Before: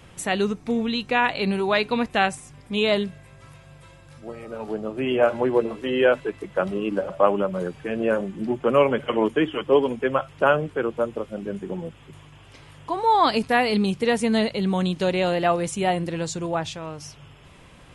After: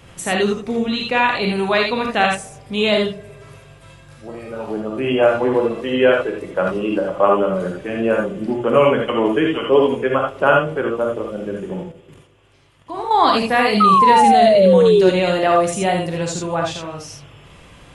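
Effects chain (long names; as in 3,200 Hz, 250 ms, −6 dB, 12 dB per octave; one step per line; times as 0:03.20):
0:11.83–0:13.11: output level in coarse steps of 15 dB
feedback echo with a band-pass in the loop 117 ms, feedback 64%, band-pass 420 Hz, level −18.5 dB
reverb whose tail is shaped and stops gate 100 ms rising, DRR 0.5 dB
0:13.80–0:15.10: sound drawn into the spectrogram fall 360–1,300 Hz −14 dBFS
level +2.5 dB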